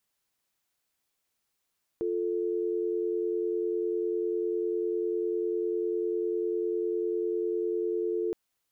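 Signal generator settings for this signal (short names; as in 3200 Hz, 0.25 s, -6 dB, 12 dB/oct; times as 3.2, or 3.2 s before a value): call progress tone dial tone, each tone -29.5 dBFS 6.32 s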